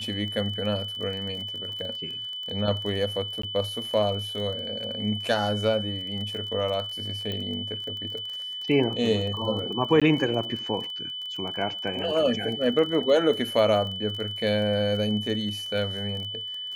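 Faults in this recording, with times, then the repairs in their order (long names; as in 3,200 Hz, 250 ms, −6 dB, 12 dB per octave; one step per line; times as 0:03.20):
surface crackle 27 per second −33 dBFS
whistle 3,000 Hz −32 dBFS
0:03.42–0:03.43: drop-out 14 ms
0:07.32: click −19 dBFS
0:10.00–0:10.02: drop-out 16 ms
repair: click removal
notch filter 3,000 Hz, Q 30
repair the gap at 0:03.42, 14 ms
repair the gap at 0:10.00, 16 ms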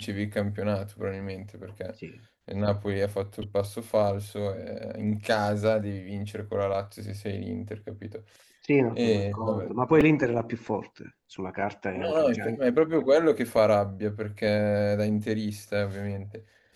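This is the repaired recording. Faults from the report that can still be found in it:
none of them is left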